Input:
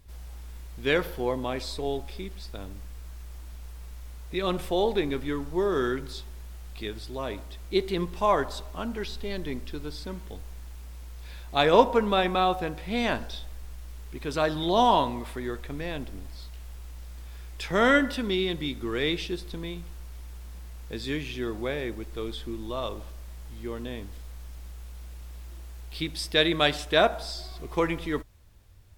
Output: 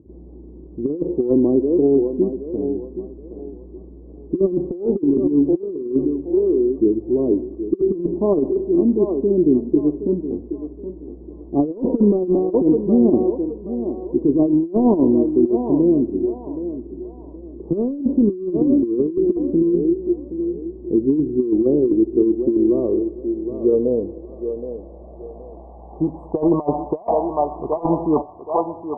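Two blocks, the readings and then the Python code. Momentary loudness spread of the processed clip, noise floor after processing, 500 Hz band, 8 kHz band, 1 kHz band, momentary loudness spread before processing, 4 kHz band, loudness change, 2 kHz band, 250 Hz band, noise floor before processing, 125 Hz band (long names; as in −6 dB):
16 LU, −39 dBFS, +9.5 dB, below −35 dB, −1.5 dB, 21 LU, below −40 dB, +8.5 dB, below −40 dB, +15.5 dB, −42 dBFS, +6.0 dB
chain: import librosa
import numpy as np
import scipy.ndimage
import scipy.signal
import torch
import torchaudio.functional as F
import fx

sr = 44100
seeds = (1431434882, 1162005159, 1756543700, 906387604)

p1 = fx.brickwall_bandstop(x, sr, low_hz=1200.0, high_hz=7000.0)
p2 = fx.filter_sweep_lowpass(p1, sr, from_hz=340.0, to_hz=890.0, start_s=22.53, end_s=26.48, q=4.8)
p3 = scipy.signal.sosfilt(scipy.signal.butter(2, 230.0, 'highpass', fs=sr, output='sos'), p2)
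p4 = p3 + fx.echo_thinned(p3, sr, ms=771, feedback_pct=39, hz=400.0, wet_db=-7.5, dry=0)
p5 = fx.over_compress(p4, sr, threshold_db=-25.0, ratio=-0.5)
p6 = fx.tilt_eq(p5, sr, slope=-3.5)
y = p6 * 10.0 ** (4.0 / 20.0)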